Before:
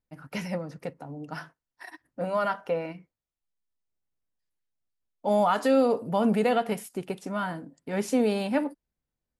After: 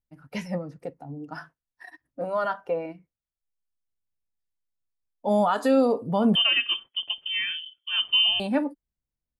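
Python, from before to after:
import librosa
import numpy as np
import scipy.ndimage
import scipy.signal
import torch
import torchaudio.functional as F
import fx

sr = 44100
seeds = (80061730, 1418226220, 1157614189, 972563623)

y = fx.low_shelf(x, sr, hz=160.0, db=9.5)
y = fx.freq_invert(y, sr, carrier_hz=3300, at=(6.35, 8.4))
y = fx.noise_reduce_blind(y, sr, reduce_db=9)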